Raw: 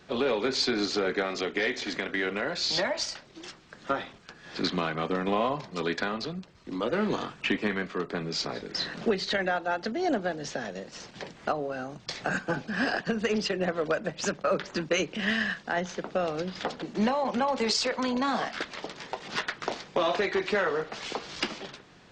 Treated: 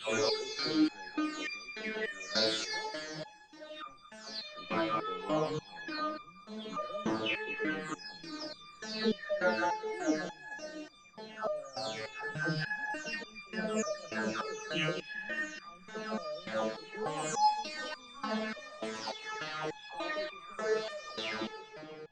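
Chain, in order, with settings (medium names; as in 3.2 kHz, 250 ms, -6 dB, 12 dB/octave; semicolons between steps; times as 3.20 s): delay that grows with frequency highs early, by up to 529 ms; two-band feedback delay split 1.1 kHz, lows 412 ms, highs 217 ms, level -10 dB; resonator arpeggio 3.4 Hz 110–1200 Hz; trim +9 dB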